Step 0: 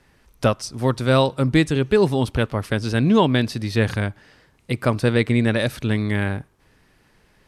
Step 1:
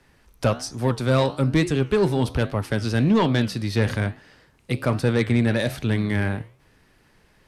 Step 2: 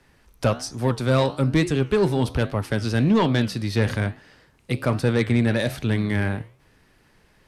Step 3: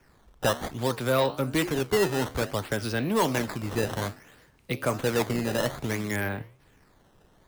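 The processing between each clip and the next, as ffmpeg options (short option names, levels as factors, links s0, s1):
-filter_complex "[0:a]flanger=delay=9.6:depth=7.9:regen=-82:speed=1.2:shape=triangular,acrossover=split=160[s0][s1];[s1]asoftclip=type=tanh:threshold=0.133[s2];[s0][s2]amix=inputs=2:normalize=0,volume=1.58"
-af anull
-filter_complex "[0:a]acrossover=split=330|1000[s0][s1][s2];[s0]acompressor=threshold=0.0316:ratio=6[s3];[s3][s1][s2]amix=inputs=3:normalize=0,acrusher=samples=11:mix=1:aa=0.000001:lfo=1:lforange=17.6:lforate=0.59,volume=0.841"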